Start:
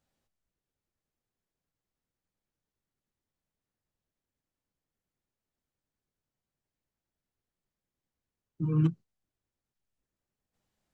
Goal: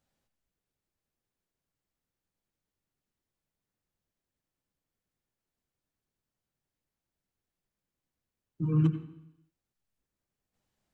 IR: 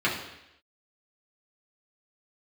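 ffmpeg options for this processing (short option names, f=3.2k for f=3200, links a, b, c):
-filter_complex "[0:a]asplit=2[a][b];[1:a]atrim=start_sample=2205,adelay=84[c];[b][c]afir=irnorm=-1:irlink=0,volume=-23dB[d];[a][d]amix=inputs=2:normalize=0"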